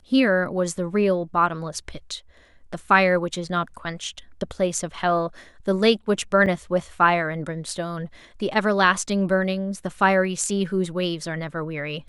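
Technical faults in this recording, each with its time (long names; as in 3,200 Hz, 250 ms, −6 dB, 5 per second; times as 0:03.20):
0:06.46–0:06.47: drop-out 5.8 ms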